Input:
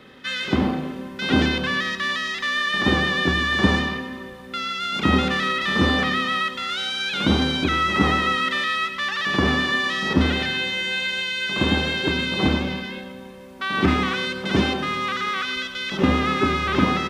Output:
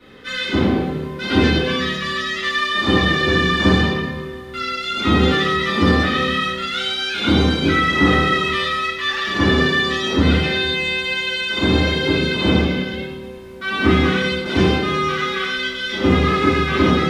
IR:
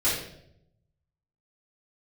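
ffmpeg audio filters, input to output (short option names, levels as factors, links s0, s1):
-filter_complex "[1:a]atrim=start_sample=2205,asetrate=43218,aresample=44100[s0];[0:a][s0]afir=irnorm=-1:irlink=0,volume=0.376"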